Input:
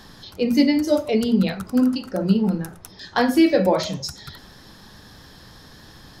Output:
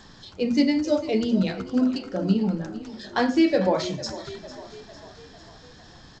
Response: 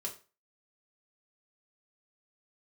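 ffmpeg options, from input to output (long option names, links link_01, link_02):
-filter_complex "[0:a]asplit=6[link_01][link_02][link_03][link_04][link_05][link_06];[link_02]adelay=451,afreqshift=33,volume=-15.5dB[link_07];[link_03]adelay=902,afreqshift=66,volume=-20.7dB[link_08];[link_04]adelay=1353,afreqshift=99,volume=-25.9dB[link_09];[link_05]adelay=1804,afreqshift=132,volume=-31.1dB[link_10];[link_06]adelay=2255,afreqshift=165,volume=-36.3dB[link_11];[link_01][link_07][link_08][link_09][link_10][link_11]amix=inputs=6:normalize=0,volume=-3.5dB" -ar 16000 -c:a g722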